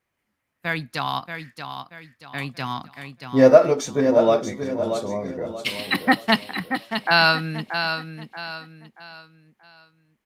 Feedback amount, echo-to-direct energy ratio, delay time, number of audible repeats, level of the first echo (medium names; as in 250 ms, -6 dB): 36%, -7.5 dB, 631 ms, 4, -8.0 dB